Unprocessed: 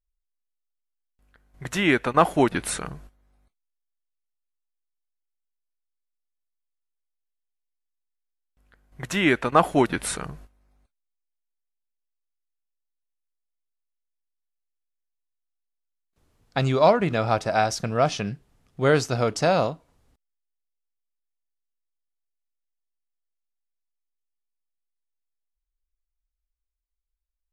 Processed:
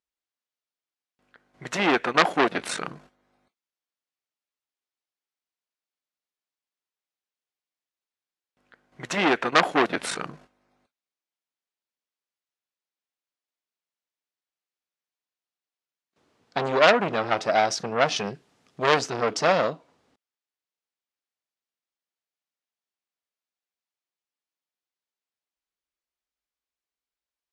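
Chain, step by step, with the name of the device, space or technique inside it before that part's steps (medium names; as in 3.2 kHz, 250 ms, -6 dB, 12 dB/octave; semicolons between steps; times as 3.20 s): public-address speaker with an overloaded transformer (transformer saturation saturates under 3 kHz; band-pass 230–5800 Hz); 18.16–18.96 s: treble shelf 4.4 kHz +8 dB; trim +5 dB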